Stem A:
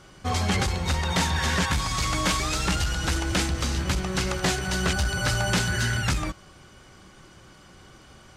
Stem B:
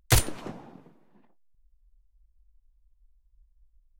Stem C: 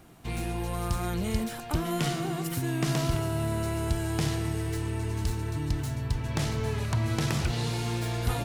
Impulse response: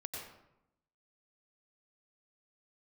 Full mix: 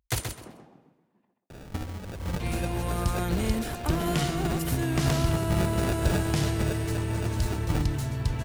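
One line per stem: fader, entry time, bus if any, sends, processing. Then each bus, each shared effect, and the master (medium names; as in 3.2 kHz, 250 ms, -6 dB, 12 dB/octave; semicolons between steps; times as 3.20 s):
0.0 dB, 1.50 s, no send, no echo send, peaking EQ 450 Hz -8.5 dB 1.1 oct; compressor with a negative ratio -31 dBFS, ratio -0.5; sample-and-hold 42×
-8.0 dB, 0.00 s, no send, echo send -6.5 dB, high-pass 56 Hz
+1.5 dB, 2.15 s, no send, no echo send, none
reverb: none
echo: feedback delay 129 ms, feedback 19%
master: none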